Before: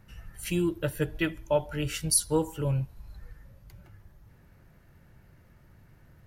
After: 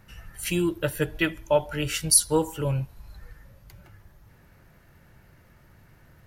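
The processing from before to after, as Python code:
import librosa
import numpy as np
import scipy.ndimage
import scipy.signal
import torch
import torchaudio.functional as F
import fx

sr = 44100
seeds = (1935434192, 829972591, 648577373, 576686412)

y = fx.low_shelf(x, sr, hz=440.0, db=-5.5)
y = F.gain(torch.from_numpy(y), 6.0).numpy()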